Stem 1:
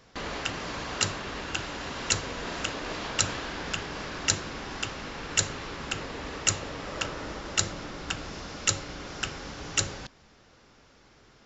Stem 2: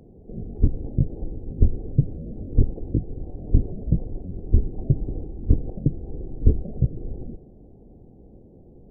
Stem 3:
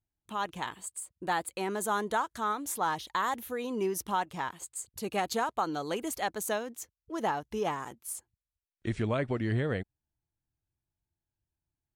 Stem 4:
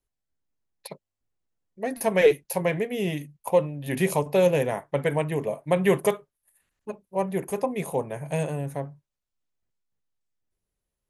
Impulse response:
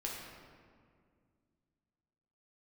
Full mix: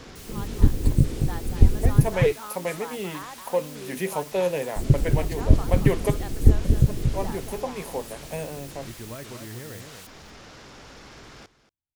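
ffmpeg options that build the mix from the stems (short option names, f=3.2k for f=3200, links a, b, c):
-filter_complex "[0:a]acompressor=threshold=-37dB:ratio=3,alimiter=level_in=4.5dB:limit=-24dB:level=0:latency=1:release=268,volume=-4.5dB,aeval=exprs='0.00531*sin(PI/2*2.51*val(0)/0.00531)':c=same,volume=2dB,asplit=3[a][b][c];[b]volume=-11.5dB[d];[c]volume=-15dB[e];[1:a]volume=2dB,asplit=3[f][g][h];[f]atrim=end=2.09,asetpts=PTS-STARTPTS,afade=t=out:st=2.086:d=0.004:c=hsin[i];[g]atrim=start=2.09:end=4.76,asetpts=PTS-STARTPTS,volume=0[j];[h]atrim=start=4.76,asetpts=PTS-STARTPTS,afade=t=in:d=0.004:c=hsin[k];[i][j][k]concat=n=3:v=0:a=1,asplit=2[l][m];[m]volume=-5.5dB[n];[2:a]volume=-9.5dB,asplit=2[o][p];[p]volume=-7dB[q];[3:a]highpass=190,volume=-4dB[r];[4:a]atrim=start_sample=2205[s];[d][s]afir=irnorm=-1:irlink=0[t];[e][n][q]amix=inputs=3:normalize=0,aecho=0:1:232:1[u];[a][l][o][r][t][u]amix=inputs=6:normalize=0"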